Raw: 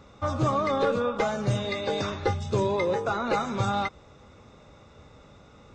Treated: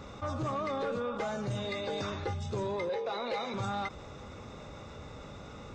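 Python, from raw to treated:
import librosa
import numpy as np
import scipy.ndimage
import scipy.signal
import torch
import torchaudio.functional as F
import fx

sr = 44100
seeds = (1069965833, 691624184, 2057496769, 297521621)

y = fx.cabinet(x, sr, low_hz=290.0, low_slope=12, high_hz=5400.0, hz=(320.0, 500.0, 1400.0, 2200.0, 4000.0), db=(-8, 7, -10, 8, 8), at=(2.89, 3.54))
y = 10.0 ** (-18.5 / 20.0) * np.tanh(y / 10.0 ** (-18.5 / 20.0))
y = fx.env_flatten(y, sr, amount_pct=50)
y = y * 10.0 ** (-9.0 / 20.0)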